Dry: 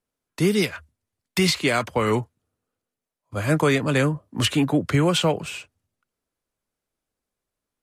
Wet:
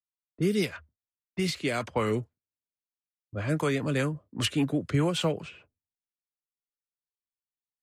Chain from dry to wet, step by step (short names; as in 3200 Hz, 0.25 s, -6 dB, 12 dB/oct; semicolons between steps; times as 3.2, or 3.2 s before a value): gate with hold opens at -44 dBFS; low-pass opened by the level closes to 340 Hz, open at -19 dBFS; rotary speaker horn 0.85 Hz, later 5 Hz, at 1.77; gain -5 dB